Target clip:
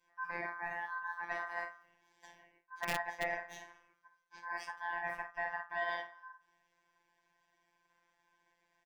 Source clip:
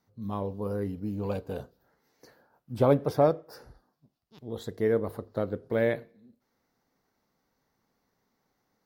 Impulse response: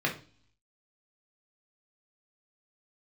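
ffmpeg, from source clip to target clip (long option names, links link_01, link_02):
-filter_complex "[0:a]aecho=1:1:22|52:0.2|0.335[link_01];[1:a]atrim=start_sample=2205,asetrate=79380,aresample=44100[link_02];[link_01][link_02]afir=irnorm=-1:irlink=0,aeval=exprs='(mod(1.88*val(0)+1,2)-1)/1.88':channel_layout=same,areverse,acompressor=threshold=-31dB:ratio=4,areverse,afreqshift=47,aeval=exprs='clip(val(0),-1,0.0708)':channel_layout=same,aeval=exprs='val(0)*sin(2*PI*1300*n/s)':channel_layout=same,afftfilt=real='hypot(re,im)*cos(PI*b)':imag='0':win_size=1024:overlap=0.75"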